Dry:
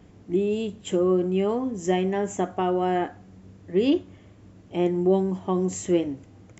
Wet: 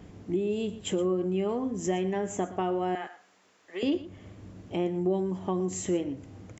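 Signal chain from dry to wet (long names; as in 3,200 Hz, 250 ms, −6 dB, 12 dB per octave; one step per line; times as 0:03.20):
0:02.95–0:03.83: high-pass filter 1,000 Hz 12 dB per octave
downward compressor 2 to 1, threshold −35 dBFS, peak gain reduction 11 dB
on a send: single-tap delay 118 ms −16 dB
on the sum: level +3 dB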